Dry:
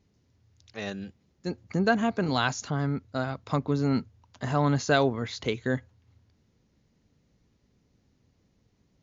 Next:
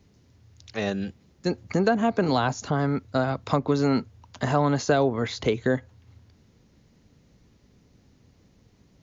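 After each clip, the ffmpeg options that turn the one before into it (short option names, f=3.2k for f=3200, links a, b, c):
-filter_complex "[0:a]acrossover=split=330|950[a][b][c];[a]acompressor=threshold=-36dB:ratio=4[d];[b]acompressor=threshold=-30dB:ratio=4[e];[c]acompressor=threshold=-42dB:ratio=4[f];[d][e][f]amix=inputs=3:normalize=0,volume=9dB"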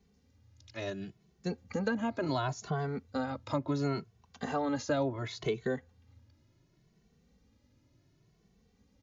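-filter_complex "[0:a]asplit=2[a][b];[b]adelay=2.2,afreqshift=0.7[c];[a][c]amix=inputs=2:normalize=1,volume=-6dB"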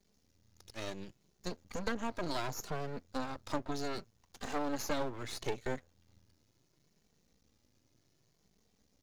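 -af "bass=f=250:g=-3,treble=f=4k:g=9,aeval=exprs='max(val(0),0)':c=same"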